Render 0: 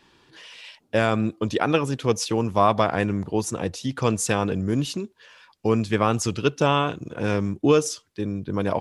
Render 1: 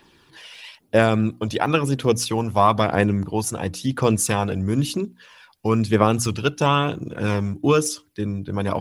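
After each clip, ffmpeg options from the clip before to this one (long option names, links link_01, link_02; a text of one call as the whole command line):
ffmpeg -i in.wav -af "bandreject=frequency=60:width_type=h:width=6,bandreject=frequency=120:width_type=h:width=6,bandreject=frequency=180:width_type=h:width=6,bandreject=frequency=240:width_type=h:width=6,bandreject=frequency=300:width_type=h:width=6,aphaser=in_gain=1:out_gain=1:delay=1.5:decay=0.38:speed=1:type=triangular,aexciter=amount=3.1:drive=2.9:freq=9800,volume=1.5dB" out.wav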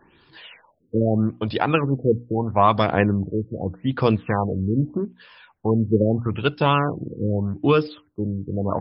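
ffmpeg -i in.wav -af "afftfilt=real='re*lt(b*sr/1024,510*pow(5400/510,0.5+0.5*sin(2*PI*0.8*pts/sr)))':imag='im*lt(b*sr/1024,510*pow(5400/510,0.5+0.5*sin(2*PI*0.8*pts/sr)))':win_size=1024:overlap=0.75" out.wav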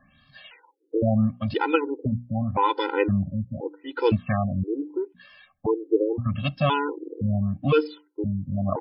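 ffmpeg -i in.wav -af "afftfilt=real='re*gt(sin(2*PI*0.97*pts/sr)*(1-2*mod(floor(b*sr/1024/260),2)),0)':imag='im*gt(sin(2*PI*0.97*pts/sr)*(1-2*mod(floor(b*sr/1024/260),2)),0)':win_size=1024:overlap=0.75" out.wav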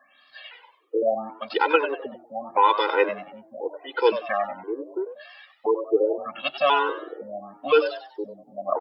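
ffmpeg -i in.wav -filter_complex "[0:a]highpass=frequency=410:width=0.5412,highpass=frequency=410:width=1.3066,asplit=2[link_01][link_02];[link_02]asplit=4[link_03][link_04][link_05][link_06];[link_03]adelay=95,afreqshift=110,volume=-11dB[link_07];[link_04]adelay=190,afreqshift=220,volume=-20.1dB[link_08];[link_05]adelay=285,afreqshift=330,volume=-29.2dB[link_09];[link_06]adelay=380,afreqshift=440,volume=-38.4dB[link_10];[link_07][link_08][link_09][link_10]amix=inputs=4:normalize=0[link_11];[link_01][link_11]amix=inputs=2:normalize=0,volume=4dB" out.wav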